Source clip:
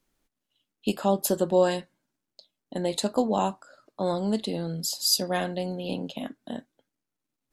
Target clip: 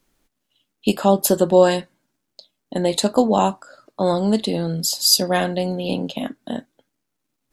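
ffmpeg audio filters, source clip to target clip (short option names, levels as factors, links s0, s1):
-af "volume=2.51"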